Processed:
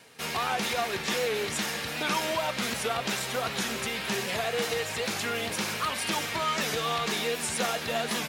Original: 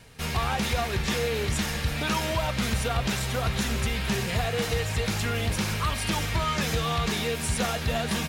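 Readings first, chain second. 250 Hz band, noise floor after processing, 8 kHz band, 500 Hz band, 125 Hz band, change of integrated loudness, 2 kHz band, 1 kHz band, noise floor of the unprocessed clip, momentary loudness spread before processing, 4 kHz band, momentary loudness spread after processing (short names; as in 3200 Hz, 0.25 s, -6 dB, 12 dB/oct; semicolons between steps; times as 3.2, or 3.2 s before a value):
-5.5 dB, -35 dBFS, 0.0 dB, -0.5 dB, -13.5 dB, -1.5 dB, 0.0 dB, 0.0 dB, -31 dBFS, 1 LU, 0.0 dB, 2 LU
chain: HPF 270 Hz 12 dB/oct; record warp 78 rpm, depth 100 cents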